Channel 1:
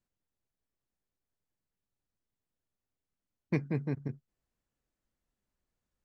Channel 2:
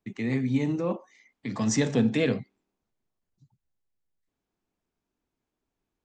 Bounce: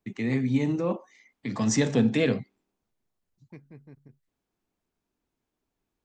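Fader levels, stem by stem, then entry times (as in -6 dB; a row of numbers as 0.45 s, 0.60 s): -16.5 dB, +1.0 dB; 0.00 s, 0.00 s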